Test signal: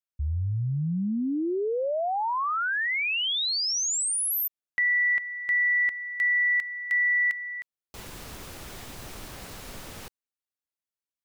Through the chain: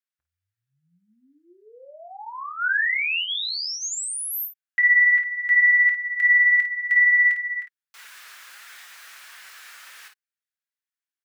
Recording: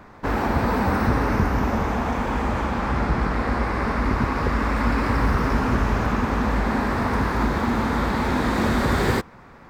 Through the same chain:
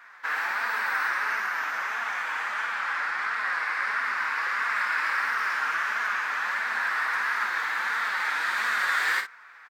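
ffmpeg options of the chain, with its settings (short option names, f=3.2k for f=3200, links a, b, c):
-filter_complex "[0:a]flanger=delay=4.1:depth=2.7:regen=-12:speed=1.5:shape=triangular,highpass=f=1.6k:t=q:w=2.5,asplit=2[a][b];[b]aecho=0:1:23|52:0.335|0.398[c];[a][c]amix=inputs=2:normalize=0"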